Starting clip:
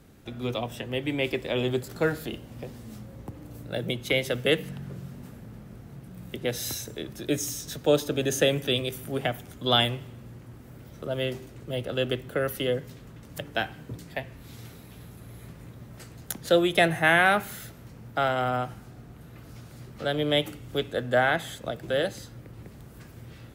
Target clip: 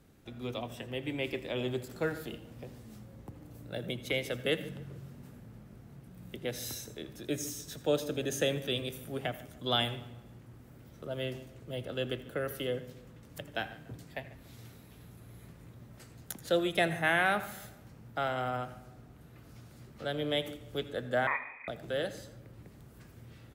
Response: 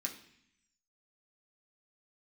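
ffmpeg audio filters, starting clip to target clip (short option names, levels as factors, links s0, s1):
-filter_complex "[0:a]asplit=2[s0][s1];[s1]adelay=145,lowpass=f=1800:p=1,volume=0.141,asplit=2[s2][s3];[s3]adelay=145,lowpass=f=1800:p=1,volume=0.47,asplit=2[s4][s5];[s5]adelay=145,lowpass=f=1800:p=1,volume=0.47,asplit=2[s6][s7];[s7]adelay=145,lowpass=f=1800:p=1,volume=0.47[s8];[s0][s2][s4][s6][s8]amix=inputs=5:normalize=0,asettb=1/sr,asplit=3[s9][s10][s11];[s9]atrim=end=21.274[s12];[s10]atrim=start=21.27:end=21.68,asetpts=PTS-STARTPTS,afade=t=in:d=0.004:c=qsin,afade=t=out:st=0.406:d=0.004:c=qsin,lowpass=f=2200:t=q:w=0.5098,lowpass=f=2200:t=q:w=0.6013,lowpass=f=2200:t=q:w=0.9,lowpass=f=2200:t=q:w=2.563,afreqshift=-2600[s13];[s11]atrim=start=21.676[s14];[s12][s13]acrossfade=d=0.004:c1=hsin:c2=qsin[s15];[s15][s14]acrossfade=d=0.004:c1=qsin:c2=hsin,asplit=2[s16][s17];[1:a]atrim=start_sample=2205,adelay=81[s18];[s17][s18]afir=irnorm=-1:irlink=0,volume=0.178[s19];[s16][s19]amix=inputs=2:normalize=0,volume=0.422"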